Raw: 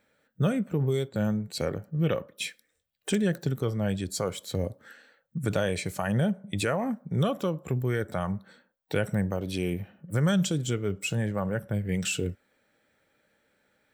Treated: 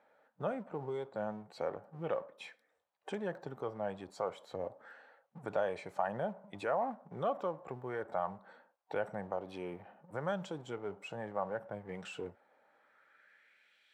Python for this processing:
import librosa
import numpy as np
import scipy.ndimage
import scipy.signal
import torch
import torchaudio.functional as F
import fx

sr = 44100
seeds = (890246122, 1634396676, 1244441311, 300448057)

y = fx.law_mismatch(x, sr, coded='mu')
y = fx.filter_sweep_bandpass(y, sr, from_hz=820.0, to_hz=3200.0, start_s=12.6, end_s=13.86, q=2.4)
y = F.gain(torch.from_numpy(y), 1.0).numpy()